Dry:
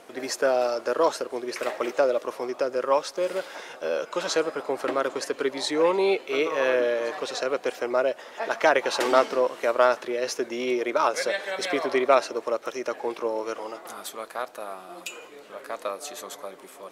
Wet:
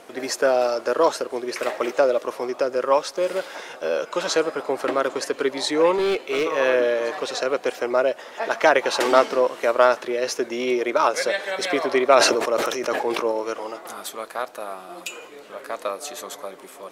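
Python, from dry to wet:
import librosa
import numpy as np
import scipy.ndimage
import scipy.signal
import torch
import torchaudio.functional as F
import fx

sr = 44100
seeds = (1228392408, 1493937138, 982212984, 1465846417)

y = fx.clip_hard(x, sr, threshold_db=-22.0, at=(5.95, 6.46))
y = fx.sustainer(y, sr, db_per_s=37.0, at=(12.06, 13.32))
y = F.gain(torch.from_numpy(y), 3.5).numpy()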